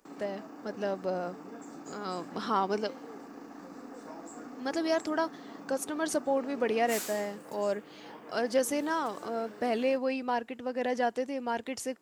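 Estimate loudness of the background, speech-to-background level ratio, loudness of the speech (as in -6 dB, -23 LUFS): -45.5 LUFS, 13.0 dB, -32.5 LUFS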